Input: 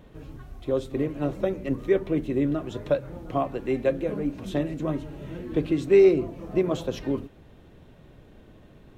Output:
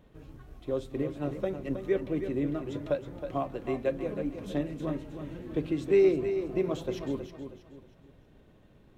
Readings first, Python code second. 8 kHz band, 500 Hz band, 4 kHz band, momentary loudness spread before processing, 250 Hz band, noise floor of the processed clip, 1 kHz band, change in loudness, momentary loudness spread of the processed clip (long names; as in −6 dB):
can't be measured, −5.5 dB, −5.5 dB, 13 LU, −5.0 dB, −59 dBFS, −5.5 dB, −5.5 dB, 15 LU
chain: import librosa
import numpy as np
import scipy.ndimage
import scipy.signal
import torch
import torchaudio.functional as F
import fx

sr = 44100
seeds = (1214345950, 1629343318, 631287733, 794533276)

p1 = np.sign(x) * np.maximum(np.abs(x) - 10.0 ** (-46.0 / 20.0), 0.0)
p2 = x + (p1 * 10.0 ** (-8.5 / 20.0))
p3 = fx.echo_feedback(p2, sr, ms=318, feedback_pct=34, wet_db=-9.0)
y = p3 * 10.0 ** (-8.5 / 20.0)